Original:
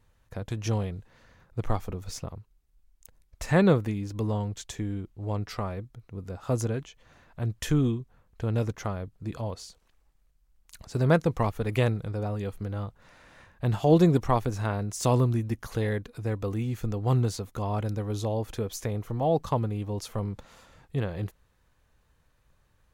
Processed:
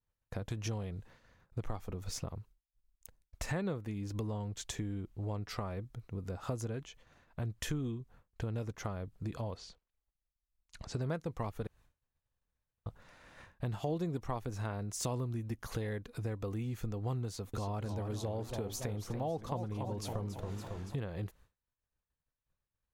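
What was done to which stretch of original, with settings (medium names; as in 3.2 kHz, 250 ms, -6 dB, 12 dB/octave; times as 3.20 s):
9.56–11.00 s: low-pass 3.8 kHz -> 6.9 kHz
11.67–12.86 s: room tone
17.26–20.96 s: modulated delay 280 ms, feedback 53%, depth 159 cents, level -8.5 dB
whole clip: expander -49 dBFS; compression 4:1, threshold -37 dBFS; trim +1 dB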